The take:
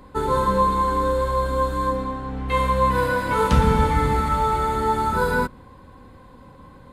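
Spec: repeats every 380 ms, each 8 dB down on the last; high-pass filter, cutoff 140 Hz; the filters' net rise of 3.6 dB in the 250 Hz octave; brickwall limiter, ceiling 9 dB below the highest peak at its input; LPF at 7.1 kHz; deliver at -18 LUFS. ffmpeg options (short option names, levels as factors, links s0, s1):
-af "highpass=140,lowpass=7100,equalizer=f=250:t=o:g=5.5,alimiter=limit=0.178:level=0:latency=1,aecho=1:1:380|760|1140|1520|1900:0.398|0.159|0.0637|0.0255|0.0102,volume=1.88"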